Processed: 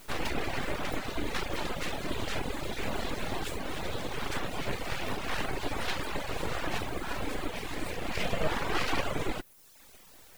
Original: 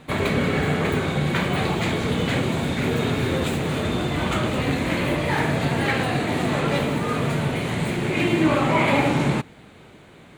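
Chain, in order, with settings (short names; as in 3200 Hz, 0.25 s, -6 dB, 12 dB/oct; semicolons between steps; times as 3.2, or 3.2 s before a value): requantised 8-bit, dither triangular; full-wave rectifier; reverb removal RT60 0.86 s; gain -6 dB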